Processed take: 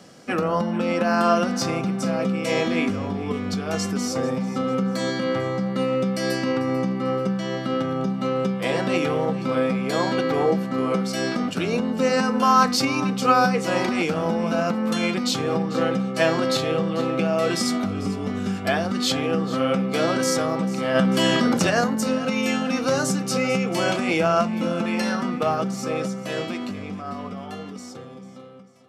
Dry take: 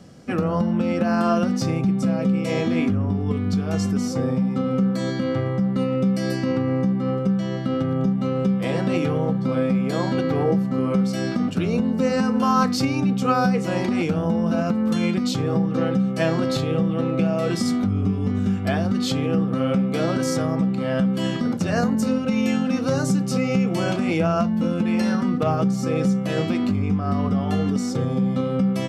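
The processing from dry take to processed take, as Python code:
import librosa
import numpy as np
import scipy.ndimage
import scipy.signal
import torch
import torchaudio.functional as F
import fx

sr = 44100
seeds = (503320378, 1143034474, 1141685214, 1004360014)

y = fx.fade_out_tail(x, sr, length_s=4.38)
y = fx.highpass(y, sr, hz=550.0, slope=6)
y = fx.echo_feedback(y, sr, ms=444, feedback_pct=46, wet_db=-16.5)
y = fx.env_flatten(y, sr, amount_pct=50, at=(20.94, 21.69), fade=0.02)
y = F.gain(torch.from_numpy(y), 5.0).numpy()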